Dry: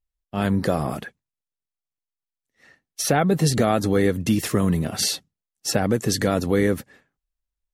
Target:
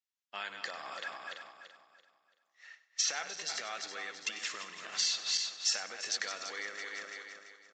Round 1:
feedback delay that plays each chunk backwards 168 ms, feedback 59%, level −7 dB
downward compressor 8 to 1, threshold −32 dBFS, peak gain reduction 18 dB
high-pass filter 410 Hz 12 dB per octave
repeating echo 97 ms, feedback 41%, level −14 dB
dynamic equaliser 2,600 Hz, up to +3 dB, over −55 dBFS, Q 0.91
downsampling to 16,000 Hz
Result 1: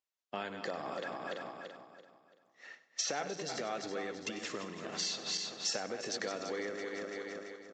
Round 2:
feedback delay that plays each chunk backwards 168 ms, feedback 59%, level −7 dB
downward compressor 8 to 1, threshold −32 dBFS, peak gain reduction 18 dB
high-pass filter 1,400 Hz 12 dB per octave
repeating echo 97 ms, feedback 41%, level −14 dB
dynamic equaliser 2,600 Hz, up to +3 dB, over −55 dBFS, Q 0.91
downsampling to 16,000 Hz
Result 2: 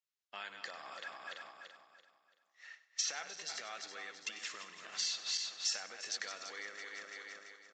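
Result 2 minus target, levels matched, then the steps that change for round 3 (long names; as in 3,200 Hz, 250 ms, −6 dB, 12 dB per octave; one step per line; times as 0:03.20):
downward compressor: peak gain reduction +5.5 dB
change: downward compressor 8 to 1, threshold −26 dBFS, peak gain reduction 12.5 dB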